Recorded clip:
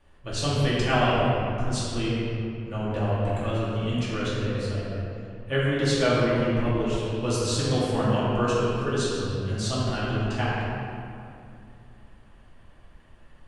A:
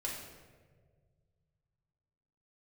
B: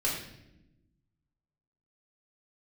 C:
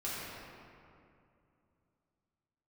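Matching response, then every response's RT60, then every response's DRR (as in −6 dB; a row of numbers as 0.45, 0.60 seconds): C; 1.7 s, non-exponential decay, 2.6 s; −4.0, −6.0, −9.5 decibels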